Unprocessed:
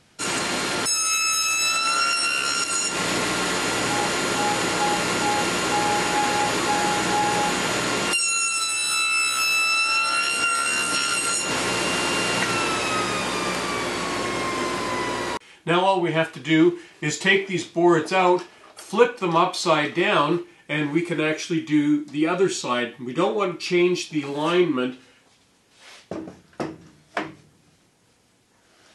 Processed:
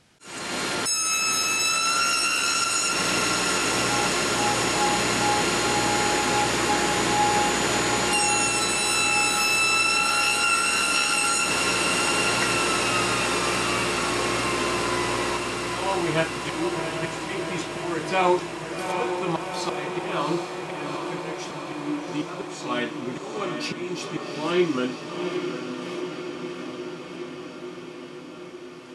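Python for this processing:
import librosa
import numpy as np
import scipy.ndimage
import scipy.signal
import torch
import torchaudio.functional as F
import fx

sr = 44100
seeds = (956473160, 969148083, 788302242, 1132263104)

y = fx.auto_swell(x, sr, attack_ms=438.0)
y = fx.echo_diffused(y, sr, ms=766, feedback_pct=74, wet_db=-5.5)
y = y * librosa.db_to_amplitude(-2.0)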